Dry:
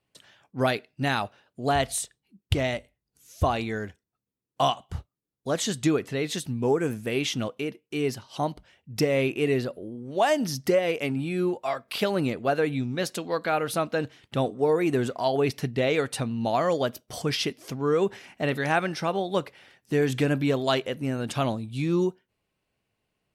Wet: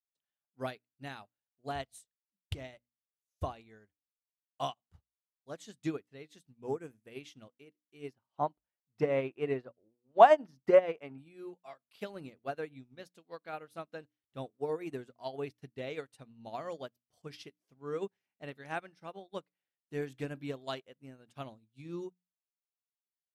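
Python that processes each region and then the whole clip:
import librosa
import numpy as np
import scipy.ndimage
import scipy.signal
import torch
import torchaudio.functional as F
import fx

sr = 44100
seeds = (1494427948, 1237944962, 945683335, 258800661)

y = fx.chain(x, sr, fx.lowpass(hz=1800.0, slope=6),
    fx.peak_eq(hz=1000.0, db=8.5, octaves=2.0), at=(8.13, 11.18))
y = fx.hum_notches(y, sr, base_hz=60, count=5)
y = fx.upward_expand(y, sr, threshold_db=-40.0, expansion=2.5)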